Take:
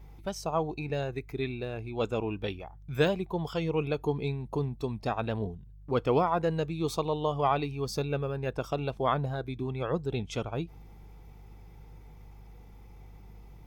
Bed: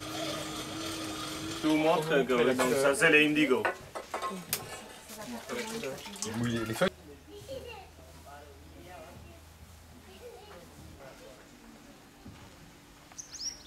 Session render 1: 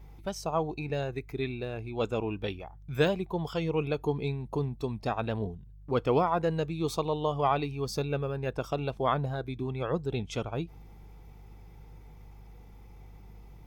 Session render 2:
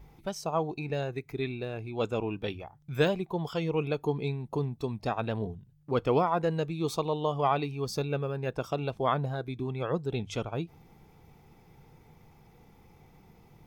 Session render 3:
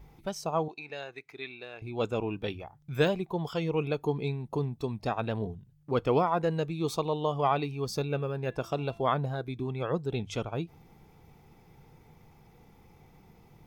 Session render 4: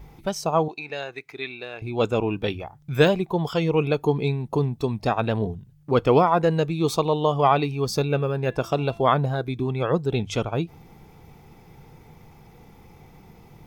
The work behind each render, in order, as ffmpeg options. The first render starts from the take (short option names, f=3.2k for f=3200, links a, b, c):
-af anull
-af "bandreject=f=50:t=h:w=4,bandreject=f=100:t=h:w=4"
-filter_complex "[0:a]asettb=1/sr,asplit=3[a][b][c];[a]atrim=end=0.684[d];[b]atrim=start=0.68:end=1.82,asetpts=PTS-STARTPTS,afade=t=in:d=0.004:c=qsin,afade=t=out:st=1.136:d=0.004:c=qsin,bandpass=f=2.5k:t=q:w=0.51[e];[c]atrim=start=1.816[f];[d][e]acrossfade=d=0.004:c1=hsin:c2=qsin[g];[g][f]acrossfade=d=0.004:c1=qsin:c2=hsin,asettb=1/sr,asplit=3[h][i][j];[h]atrim=end=8.084[k];[i]atrim=start=8.08:end=9.02,asetpts=PTS-STARTPTS,afade=t=in:d=0.004:c=qsin,afade=t=out:st=0.936:d=0.004:c=qsin,bandreject=f=339.8:t=h:w=4,bandreject=f=679.6:t=h:w=4,bandreject=f=1.0194k:t=h:w=4,bandreject=f=1.3592k:t=h:w=4,bandreject=f=1.699k:t=h:w=4,bandreject=f=2.0388k:t=h:w=4,bandreject=f=2.3786k:t=h:w=4,bandreject=f=2.7184k:t=h:w=4,bandreject=f=3.0582k:t=h:w=4,bandreject=f=3.398k:t=h:w=4,bandreject=f=3.7378k:t=h:w=4,bandreject=f=4.0776k:t=h:w=4,bandreject=f=4.4174k:t=h:w=4,bandreject=f=4.7572k:t=h:w=4,bandreject=f=5.097k:t=h:w=4,bandreject=f=5.4368k:t=h:w=4,bandreject=f=5.7766k:t=h:w=4,bandreject=f=6.1164k:t=h:w=4,bandreject=f=6.4562k:t=h:w=4,bandreject=f=6.796k:t=h:w=4,bandreject=f=7.1358k:t=h:w=4,bandreject=f=7.4756k:t=h:w=4,bandreject=f=7.8154k:t=h:w=4,bandreject=f=8.1552k:t=h:w=4,bandreject=f=8.495k:t=h:w=4,bandreject=f=8.8348k:t=h:w=4,bandreject=f=9.1746k:t=h:w=4,bandreject=f=9.5144k:t=h:w=4,bandreject=f=9.8542k:t=h:w=4,bandreject=f=10.194k:t=h:w=4,bandreject=f=10.5338k:t=h:w=4,bandreject=f=10.8736k:t=h:w=4,bandreject=f=11.2134k:t=h:w=4,bandreject=f=11.5532k:t=h:w=4,bandreject=f=11.893k:t=h:w=4[l];[j]atrim=start=9.016[m];[k][l]acrossfade=d=0.004:c1=hsin:c2=qsin[n];[n][m]acrossfade=d=0.004:c1=qsin:c2=hsin"
-af "volume=8dB"